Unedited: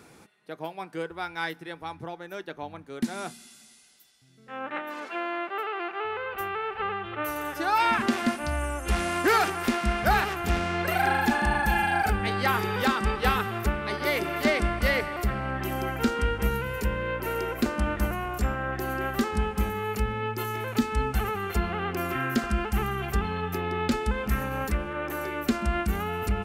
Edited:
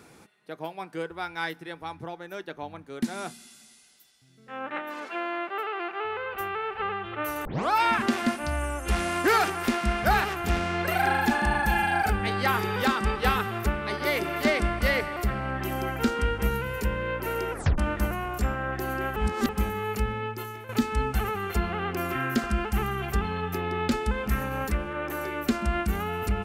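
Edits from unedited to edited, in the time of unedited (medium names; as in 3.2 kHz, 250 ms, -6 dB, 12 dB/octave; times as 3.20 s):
7.45 s: tape start 0.26 s
17.52 s: tape stop 0.26 s
19.16–19.49 s: reverse
20.10–20.69 s: fade out, to -12.5 dB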